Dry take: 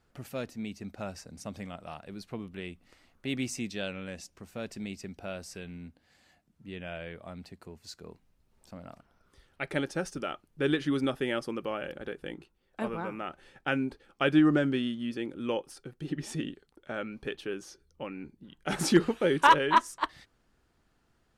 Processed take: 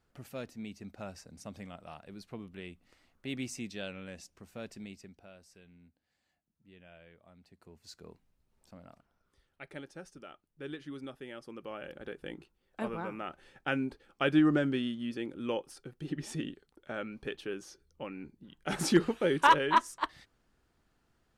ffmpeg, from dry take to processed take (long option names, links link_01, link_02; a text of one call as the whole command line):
ffmpeg -i in.wav -af "volume=19dB,afade=type=out:start_time=4.65:duration=0.65:silence=0.281838,afade=type=in:start_time=7.42:duration=0.6:silence=0.251189,afade=type=out:start_time=8.02:duration=1.8:silence=0.298538,afade=type=in:start_time=11.37:duration=0.97:silence=0.251189" out.wav